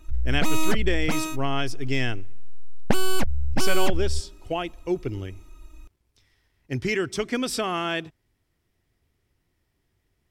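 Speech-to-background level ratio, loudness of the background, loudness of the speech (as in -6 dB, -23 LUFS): 0.5 dB, -29.0 LUFS, -28.5 LUFS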